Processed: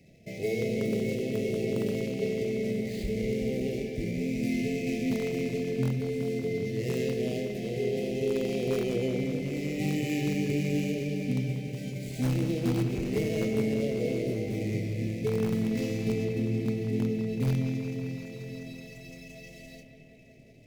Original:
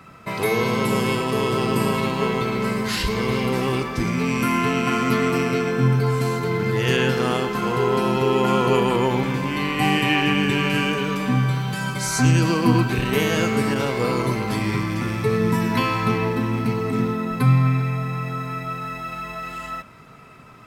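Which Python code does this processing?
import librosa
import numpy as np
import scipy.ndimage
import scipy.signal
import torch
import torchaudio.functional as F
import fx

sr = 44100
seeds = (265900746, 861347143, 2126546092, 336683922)

p1 = scipy.signal.medfilt(x, 15)
p2 = scipy.signal.sosfilt(scipy.signal.ellip(3, 1.0, 50, [640.0, 2100.0], 'bandstop', fs=sr, output='sos'), p1)
p3 = fx.doubler(p2, sr, ms=27.0, db=-10.0)
p4 = (np.mod(10.0 ** (12.0 / 20.0) * p3 + 1.0, 2.0) - 1.0) / 10.0 ** (12.0 / 20.0)
p5 = p3 + (p4 * librosa.db_to_amplitude(-12.0))
p6 = fx.comb_fb(p5, sr, f0_hz=430.0, decay_s=0.72, harmonics='all', damping=0.0, mix_pct=70)
y = p6 + fx.echo_bbd(p6, sr, ms=187, stages=4096, feedback_pct=77, wet_db=-9.5, dry=0)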